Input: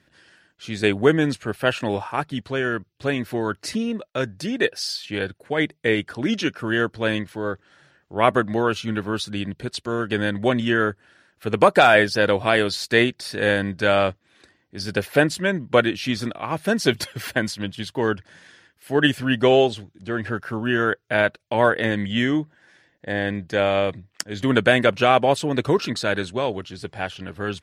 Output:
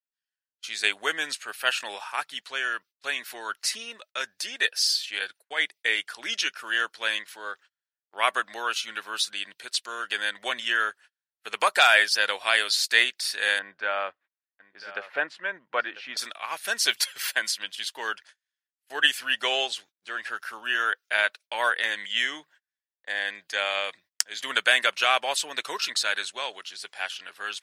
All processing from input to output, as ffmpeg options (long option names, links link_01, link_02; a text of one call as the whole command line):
ffmpeg -i in.wav -filter_complex "[0:a]asettb=1/sr,asplit=3[link_01][link_02][link_03];[link_01]atrim=end=13.594[link_04];[link_02]atrim=start=13.59:end=16.17,asetpts=PTS-STARTPTS,afade=type=in:duration=0.004:curve=qsin,afade=type=out:start_time=2.576:duration=0.004:curve=qsin,lowpass=1500,aecho=1:1:994:0.178,atrim=end_sample=113778[link_05];[link_03]atrim=start=16.166[link_06];[link_04][link_05]acrossfade=duration=0.004:curve1=hsin:curve2=qsin[link_07];[link_07][link_06]acrossfade=duration=0.004:curve1=qsin:curve2=hsin,agate=range=-41dB:threshold=-41dB:ratio=16:detection=peak,highpass=1100,highshelf=frequency=2700:gain=9,volume=-2.5dB" out.wav